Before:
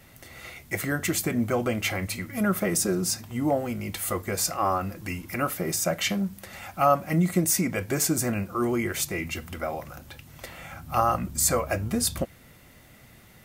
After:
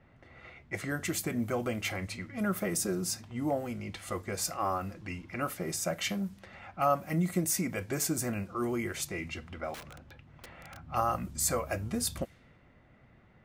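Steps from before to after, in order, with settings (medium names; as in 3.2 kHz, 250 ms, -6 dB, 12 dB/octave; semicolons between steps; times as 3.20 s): level-controlled noise filter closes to 1.6 kHz, open at -23 dBFS; 9.74–10.79 s: integer overflow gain 33 dB; trim -6.5 dB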